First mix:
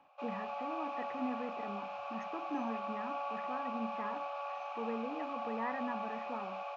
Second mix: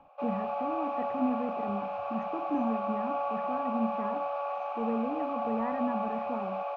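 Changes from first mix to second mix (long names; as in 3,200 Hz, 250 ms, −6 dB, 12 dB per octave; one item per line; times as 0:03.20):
background +6.0 dB
master: add spectral tilt −4.5 dB per octave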